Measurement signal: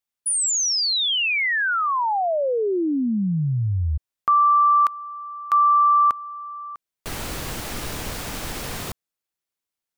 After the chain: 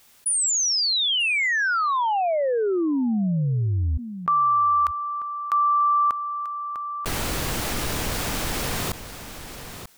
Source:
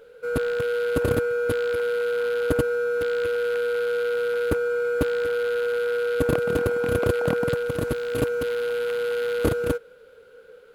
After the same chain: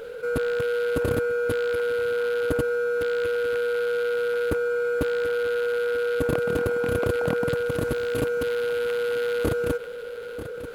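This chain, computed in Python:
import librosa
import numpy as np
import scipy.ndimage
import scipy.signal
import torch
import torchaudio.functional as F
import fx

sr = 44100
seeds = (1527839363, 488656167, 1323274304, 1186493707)

y = x + 10.0 ** (-22.5 / 20.0) * np.pad(x, (int(939 * sr / 1000.0), 0))[:len(x)]
y = fx.env_flatten(y, sr, amount_pct=50)
y = y * librosa.db_to_amplitude(-3.5)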